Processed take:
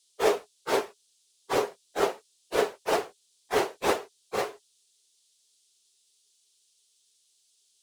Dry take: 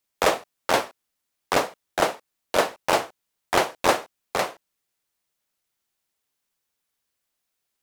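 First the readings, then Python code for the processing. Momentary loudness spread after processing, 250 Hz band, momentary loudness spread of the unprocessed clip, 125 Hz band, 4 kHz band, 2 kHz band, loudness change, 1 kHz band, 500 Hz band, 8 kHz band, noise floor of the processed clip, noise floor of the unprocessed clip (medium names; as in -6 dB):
8 LU, -3.5 dB, 8 LU, -7.0 dB, -7.0 dB, -7.0 dB, -4.5 dB, -6.5 dB, -2.0 dB, -7.0 dB, -68 dBFS, -80 dBFS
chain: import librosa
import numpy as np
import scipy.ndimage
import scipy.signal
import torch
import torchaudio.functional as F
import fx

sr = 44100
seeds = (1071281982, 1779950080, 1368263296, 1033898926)

y = fx.phase_scramble(x, sr, seeds[0], window_ms=50)
y = fx.peak_eq(y, sr, hz=410.0, db=15.0, octaves=0.29)
y = fx.dmg_noise_band(y, sr, seeds[1], low_hz=3200.0, high_hz=10000.0, level_db=-61.0)
y = y * librosa.db_to_amplitude(-7.0)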